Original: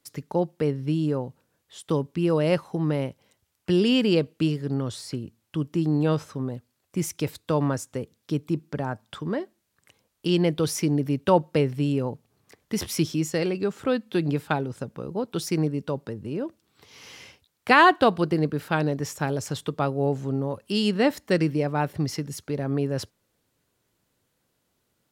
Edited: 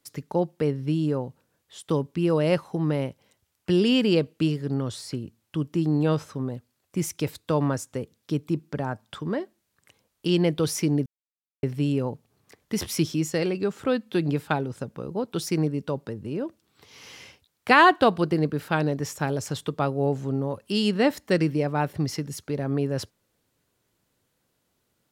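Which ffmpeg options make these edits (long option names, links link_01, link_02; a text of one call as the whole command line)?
ffmpeg -i in.wav -filter_complex "[0:a]asplit=3[link_01][link_02][link_03];[link_01]atrim=end=11.06,asetpts=PTS-STARTPTS,afade=type=out:start_time=11.056:duration=0.004:curve=hsin[link_04];[link_02]atrim=start=11.06:end=11.63,asetpts=PTS-STARTPTS,volume=0[link_05];[link_03]atrim=start=11.63,asetpts=PTS-STARTPTS,afade=type=in:duration=0.004:curve=hsin[link_06];[link_04][link_05][link_06]concat=n=3:v=0:a=1" out.wav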